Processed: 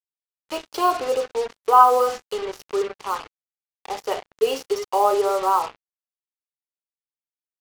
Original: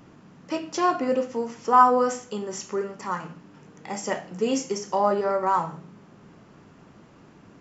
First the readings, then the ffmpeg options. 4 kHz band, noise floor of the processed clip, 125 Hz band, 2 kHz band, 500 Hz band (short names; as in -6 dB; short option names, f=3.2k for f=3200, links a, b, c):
+5.0 dB, under -85 dBFS, under -10 dB, -0.5 dB, +3.5 dB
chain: -af "highpass=f=380:w=0.5412,highpass=f=380:w=1.3066,equalizer=f=420:t=q:w=4:g=10,equalizer=f=790:t=q:w=4:g=6,equalizer=f=1.2k:t=q:w=4:g=6,equalizer=f=1.8k:t=q:w=4:g=-9,equalizer=f=2.9k:t=q:w=4:g=7,equalizer=f=4.2k:t=q:w=4:g=9,lowpass=f=5.1k:w=0.5412,lowpass=f=5.1k:w=1.3066,acrusher=bits=4:mix=0:aa=0.5,volume=-1dB"